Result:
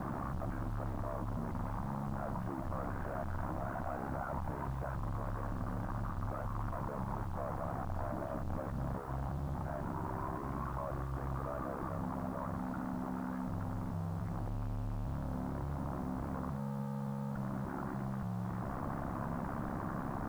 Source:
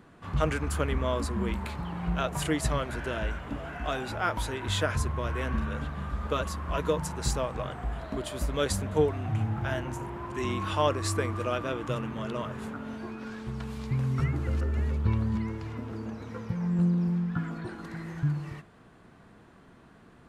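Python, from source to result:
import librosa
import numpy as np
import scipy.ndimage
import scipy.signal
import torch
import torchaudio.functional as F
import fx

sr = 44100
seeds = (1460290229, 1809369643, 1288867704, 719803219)

y = np.sign(x) * np.sqrt(np.mean(np.square(x)))
y = scipy.signal.sosfilt(scipy.signal.butter(4, 1200.0, 'lowpass', fs=sr, output='sos'), y)
y = fx.peak_eq(y, sr, hz=420.0, db=-15.0, octaves=0.38)
y = fx.hum_notches(y, sr, base_hz=60, count=7)
y = fx.rider(y, sr, range_db=10, speed_s=0.5)
y = y * np.sin(2.0 * np.pi * 34.0 * np.arange(len(y)) / sr)
y = fx.quant_dither(y, sr, seeds[0], bits=10, dither='none')
y = y * 10.0 ** (-2.5 / 20.0)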